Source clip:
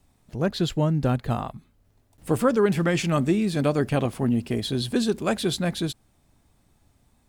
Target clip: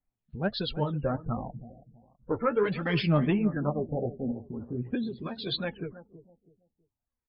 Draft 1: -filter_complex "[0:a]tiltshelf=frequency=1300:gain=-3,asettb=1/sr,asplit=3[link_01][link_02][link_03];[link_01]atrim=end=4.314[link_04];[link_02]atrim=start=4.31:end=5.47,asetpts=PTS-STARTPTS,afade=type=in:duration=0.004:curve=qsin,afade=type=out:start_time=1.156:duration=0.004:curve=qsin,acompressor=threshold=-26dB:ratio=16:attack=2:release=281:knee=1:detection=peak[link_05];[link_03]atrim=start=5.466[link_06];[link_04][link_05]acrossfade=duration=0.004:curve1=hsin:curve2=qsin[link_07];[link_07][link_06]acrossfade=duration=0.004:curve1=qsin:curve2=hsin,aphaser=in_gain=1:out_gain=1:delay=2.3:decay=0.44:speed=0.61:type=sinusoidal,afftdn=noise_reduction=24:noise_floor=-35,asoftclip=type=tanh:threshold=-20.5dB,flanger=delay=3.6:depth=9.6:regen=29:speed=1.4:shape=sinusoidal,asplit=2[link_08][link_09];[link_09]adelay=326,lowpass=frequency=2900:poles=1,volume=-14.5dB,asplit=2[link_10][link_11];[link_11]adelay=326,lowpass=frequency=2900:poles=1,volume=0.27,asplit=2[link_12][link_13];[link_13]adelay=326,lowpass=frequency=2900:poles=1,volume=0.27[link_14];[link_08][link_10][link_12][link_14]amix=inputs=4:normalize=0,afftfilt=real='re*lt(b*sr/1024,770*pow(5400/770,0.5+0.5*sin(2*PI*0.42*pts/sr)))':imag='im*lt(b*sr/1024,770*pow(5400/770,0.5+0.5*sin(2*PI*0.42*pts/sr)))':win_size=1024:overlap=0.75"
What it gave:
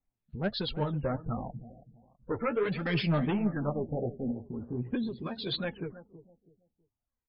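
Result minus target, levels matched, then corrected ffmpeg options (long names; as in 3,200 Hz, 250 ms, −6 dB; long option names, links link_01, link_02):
soft clipping: distortion +12 dB
-filter_complex "[0:a]tiltshelf=frequency=1300:gain=-3,asettb=1/sr,asplit=3[link_01][link_02][link_03];[link_01]atrim=end=4.314[link_04];[link_02]atrim=start=4.31:end=5.47,asetpts=PTS-STARTPTS,afade=type=in:duration=0.004:curve=qsin,afade=type=out:start_time=1.156:duration=0.004:curve=qsin,acompressor=threshold=-26dB:ratio=16:attack=2:release=281:knee=1:detection=peak[link_05];[link_03]atrim=start=5.466[link_06];[link_04][link_05]acrossfade=duration=0.004:curve1=hsin:curve2=qsin[link_07];[link_07][link_06]acrossfade=duration=0.004:curve1=qsin:curve2=hsin,aphaser=in_gain=1:out_gain=1:delay=2.3:decay=0.44:speed=0.61:type=sinusoidal,afftdn=noise_reduction=24:noise_floor=-35,asoftclip=type=tanh:threshold=-10.5dB,flanger=delay=3.6:depth=9.6:regen=29:speed=1.4:shape=sinusoidal,asplit=2[link_08][link_09];[link_09]adelay=326,lowpass=frequency=2900:poles=1,volume=-14.5dB,asplit=2[link_10][link_11];[link_11]adelay=326,lowpass=frequency=2900:poles=1,volume=0.27,asplit=2[link_12][link_13];[link_13]adelay=326,lowpass=frequency=2900:poles=1,volume=0.27[link_14];[link_08][link_10][link_12][link_14]amix=inputs=4:normalize=0,afftfilt=real='re*lt(b*sr/1024,770*pow(5400/770,0.5+0.5*sin(2*PI*0.42*pts/sr)))':imag='im*lt(b*sr/1024,770*pow(5400/770,0.5+0.5*sin(2*PI*0.42*pts/sr)))':win_size=1024:overlap=0.75"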